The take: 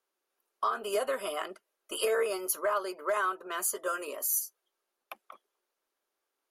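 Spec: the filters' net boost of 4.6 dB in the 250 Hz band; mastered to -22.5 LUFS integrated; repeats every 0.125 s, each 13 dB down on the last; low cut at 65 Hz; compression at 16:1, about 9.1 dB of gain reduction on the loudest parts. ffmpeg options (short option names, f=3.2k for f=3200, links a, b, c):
-af "highpass=65,equalizer=f=250:t=o:g=8.5,acompressor=threshold=-32dB:ratio=16,aecho=1:1:125|250|375:0.224|0.0493|0.0108,volume=14dB"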